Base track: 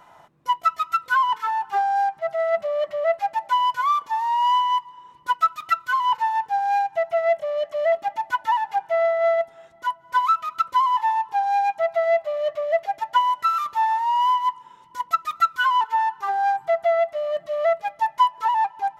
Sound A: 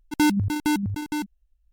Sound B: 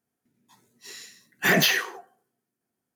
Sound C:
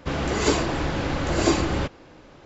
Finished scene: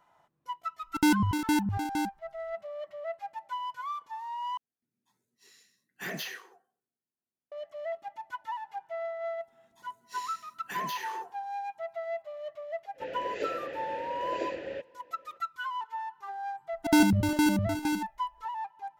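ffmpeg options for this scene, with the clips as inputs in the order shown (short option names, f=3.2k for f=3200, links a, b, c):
-filter_complex "[1:a]asplit=2[a][b];[2:a]asplit=2[c][d];[0:a]volume=-15.5dB[e];[d]acompressor=threshold=-32dB:ratio=6:attack=3.2:release=140:knee=1:detection=peak[f];[3:a]asplit=3[g][h][i];[g]bandpass=f=530:t=q:w=8,volume=0dB[j];[h]bandpass=f=1.84k:t=q:w=8,volume=-6dB[k];[i]bandpass=f=2.48k:t=q:w=8,volume=-9dB[l];[j][k][l]amix=inputs=3:normalize=0[m];[b]aecho=1:1:76:0.447[n];[e]asplit=2[o][p];[o]atrim=end=4.574[q];[c]atrim=end=2.95,asetpts=PTS-STARTPTS,volume=-17dB[r];[p]atrim=start=7.516[s];[a]atrim=end=1.72,asetpts=PTS-STARTPTS,volume=-3.5dB,afade=t=in:d=0.004:c=hsin,afade=t=out:st=1.716:d=0.004:c=hsin,adelay=830[t];[f]atrim=end=2.95,asetpts=PTS-STARTPTS,volume=-5dB,afade=t=in:d=0.004:c=hsin,afade=t=out:st=2.946:d=0.004:c=hsin,adelay=9270[u];[m]atrim=end=2.45,asetpts=PTS-STARTPTS,volume=-1dB,afade=t=in:d=0.02,afade=t=out:st=2.43:d=0.02,adelay=12940[v];[n]atrim=end=1.72,asetpts=PTS-STARTPTS,volume=-2dB,afade=t=in:d=0.004:c=hsin,afade=t=out:st=1.716:d=0.004:c=hsin,adelay=16730[w];[q][r]acrossfade=d=0.004:c1=hsin:c2=hsin[x];[x][s]acrossfade=d=0.004:c1=hsin:c2=hsin[y];[y][t][u][v][w]amix=inputs=5:normalize=0"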